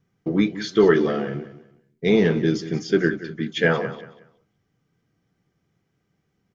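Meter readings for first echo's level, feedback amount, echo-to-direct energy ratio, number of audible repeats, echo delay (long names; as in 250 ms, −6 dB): −14.0 dB, 26%, −13.5 dB, 2, 184 ms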